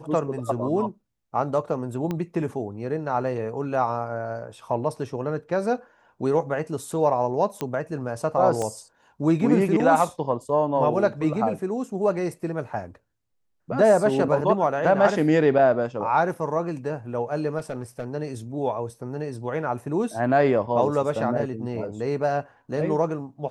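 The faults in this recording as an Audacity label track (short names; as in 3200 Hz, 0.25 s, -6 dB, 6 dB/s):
2.110000	2.110000	pop -16 dBFS
7.610000	7.610000	pop -14 dBFS
8.620000	8.620000	pop -17 dBFS
17.580000	18.040000	clipped -24.5 dBFS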